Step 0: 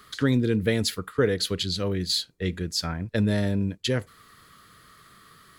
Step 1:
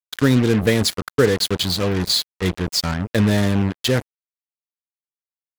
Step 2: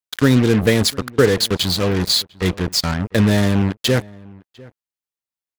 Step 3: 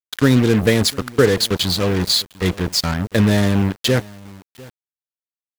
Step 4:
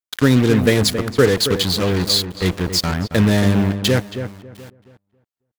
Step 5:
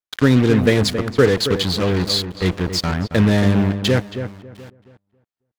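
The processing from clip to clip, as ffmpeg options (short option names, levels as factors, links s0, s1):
-af "acrusher=bits=4:mix=0:aa=0.5,volume=2.11"
-filter_complex "[0:a]asplit=2[s0][s1];[s1]adelay=699.7,volume=0.0708,highshelf=f=4000:g=-15.7[s2];[s0][s2]amix=inputs=2:normalize=0,volume=1.26"
-af "acrusher=bits=6:mix=0:aa=0.000001"
-filter_complex "[0:a]asplit=2[s0][s1];[s1]adelay=273,lowpass=f=1700:p=1,volume=0.355,asplit=2[s2][s3];[s3]adelay=273,lowpass=f=1700:p=1,volume=0.22,asplit=2[s4][s5];[s5]adelay=273,lowpass=f=1700:p=1,volume=0.22[s6];[s0][s2][s4][s6]amix=inputs=4:normalize=0"
-af "highshelf=f=7400:g=-11.5"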